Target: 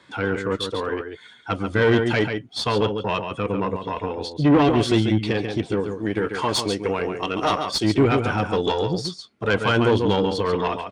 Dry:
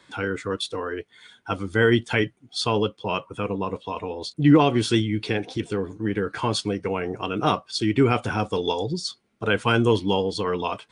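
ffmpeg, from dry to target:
ffmpeg -i in.wav -filter_complex "[0:a]asettb=1/sr,asplit=3[link_01][link_02][link_03];[link_01]atrim=end=5.804[link_04];[link_02]atrim=start=5.8:end=7.84,asetpts=PTS-STARTPTS,afade=type=in:duration=0.004:curve=qsin,afade=type=out:start_time=2.036:duration=0.004:curve=qsin,bass=frequency=250:gain=-7,treble=frequency=4000:gain=8[link_05];[link_03]atrim=start=7.836[link_06];[link_04][link_05]acrossfade=duration=0.004:curve1=hsin:curve2=qsin[link_07];[link_07][link_06]acrossfade=duration=0.004:curve1=qsin:curve2=hsin,asplit=2[link_08][link_09];[link_09]adelay=139.9,volume=-7dB,highshelf=frequency=4000:gain=-3.15[link_10];[link_08][link_10]amix=inputs=2:normalize=0,aeval=exprs='(tanh(6.31*val(0)+0.5)-tanh(0.5))/6.31':channel_layout=same,highpass=45,highshelf=frequency=6600:gain=-10,volume=5dB" out.wav

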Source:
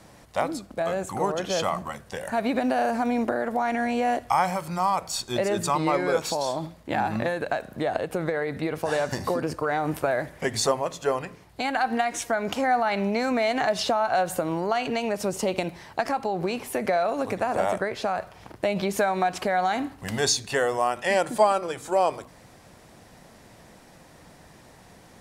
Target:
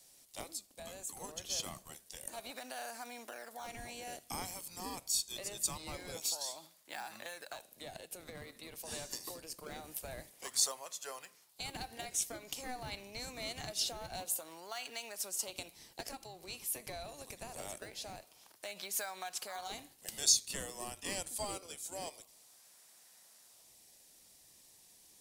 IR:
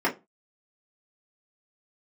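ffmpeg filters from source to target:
-filter_complex "[0:a]aderivative,acrossover=split=120|970|2100[link_01][link_02][link_03][link_04];[link_03]acrusher=samples=34:mix=1:aa=0.000001:lfo=1:lforange=54.4:lforate=0.25[link_05];[link_01][link_02][link_05][link_04]amix=inputs=4:normalize=0,volume=-1dB"

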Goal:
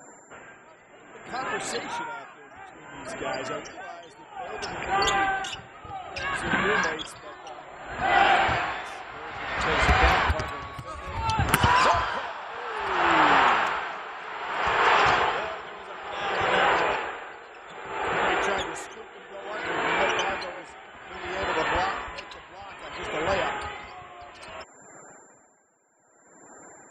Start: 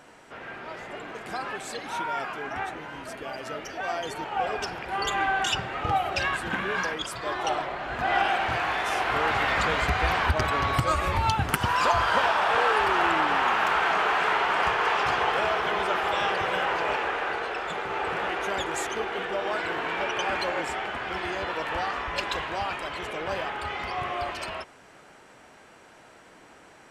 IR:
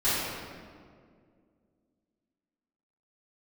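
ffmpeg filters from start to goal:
-af "acontrast=32,aeval=exprs='val(0)+0.00316*sin(2*PI*7300*n/s)':channel_layout=same,afftfilt=real='re*gte(hypot(re,im),0.00891)':imag='im*gte(hypot(re,im),0.00891)':win_size=1024:overlap=0.75,aeval=exprs='val(0)*pow(10,-19*(0.5-0.5*cos(2*PI*0.6*n/s))/20)':channel_layout=same"

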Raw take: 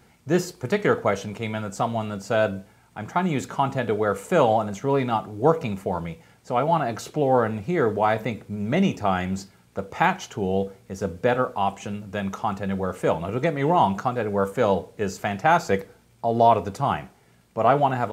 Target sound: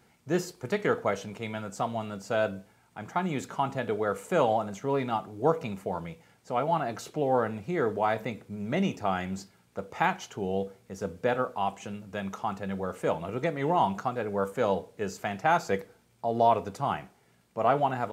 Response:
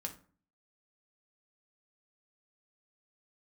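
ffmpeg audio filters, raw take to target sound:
-af "lowshelf=frequency=86:gain=-8.5,volume=-5.5dB"

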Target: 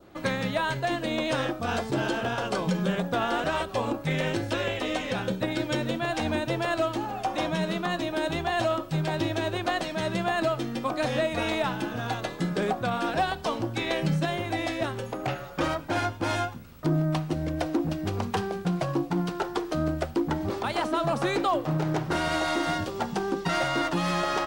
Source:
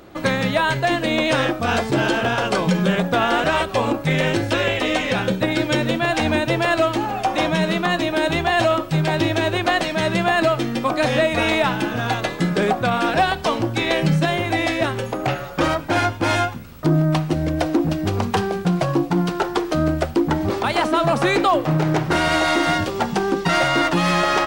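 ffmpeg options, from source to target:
ffmpeg -i in.wav -af "adynamicequalizer=threshold=0.0141:dfrequency=2200:dqfactor=1.7:tfrequency=2200:tqfactor=1.7:attack=5:release=100:ratio=0.375:range=2:mode=cutabove:tftype=bell,aeval=exprs='0.794*(cos(1*acos(clip(val(0)/0.794,-1,1)))-cos(1*PI/2))+0.0158*(cos(3*acos(clip(val(0)/0.794,-1,1)))-cos(3*PI/2))+0.01*(cos(7*acos(clip(val(0)/0.794,-1,1)))-cos(7*PI/2))':channel_layout=same,volume=-7dB" out.wav

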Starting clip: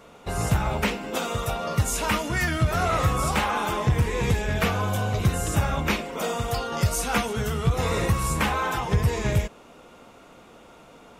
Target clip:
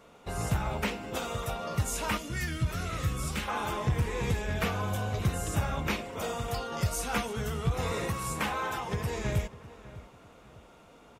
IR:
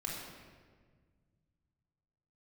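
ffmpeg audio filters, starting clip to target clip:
-filter_complex "[0:a]asettb=1/sr,asplit=3[link_01][link_02][link_03];[link_01]atrim=end=2.174[link_04];[link_02]atrim=start=2.17:end=3.48,asetpts=PTS-STARTPTS,afade=type=in:duration=0.004:curve=qsin,afade=type=out:start_time=1.306:duration=0.004:curve=qsin,equalizer=frequency=820:width=1:gain=-14[link_05];[link_03]atrim=start=3.476[link_06];[link_04][link_05]acrossfade=duration=0.004:curve1=hsin:curve2=qsin[link_07];[link_07][link_06]acrossfade=duration=0.004:curve1=qsin:curve2=hsin,asettb=1/sr,asplit=3[link_08][link_09][link_10];[link_08]atrim=end=7.924[link_11];[link_09]atrim=start=7.92:end=9.1,asetpts=PTS-STARTPTS,afade=type=in:duration=0.004:curve=qsin,afade=type=out:start_time=1.176:duration=0.004:curve=qsin,highpass=frequency=160:poles=1[link_12];[link_10]atrim=start=9.096[link_13];[link_11][link_12]acrossfade=duration=0.004:curve1=hsin:curve2=qsin[link_14];[link_14][link_13]acrossfade=duration=0.004:curve1=qsin:curve2=hsin,asplit=2[link_15][link_16];[link_16]adelay=601,lowpass=frequency=2500:poles=1,volume=-17dB,asplit=2[link_17][link_18];[link_18]adelay=601,lowpass=frequency=2500:poles=1,volume=0.36,asplit=2[link_19][link_20];[link_20]adelay=601,lowpass=frequency=2500:poles=1,volume=0.36[link_21];[link_15][link_17][link_19][link_21]amix=inputs=4:normalize=0,volume=-6.5dB"

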